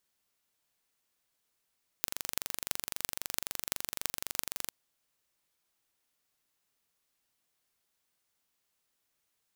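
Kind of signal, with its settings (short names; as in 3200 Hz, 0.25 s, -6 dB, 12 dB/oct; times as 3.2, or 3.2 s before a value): pulse train 23.8/s, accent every 8, -1.5 dBFS 2.68 s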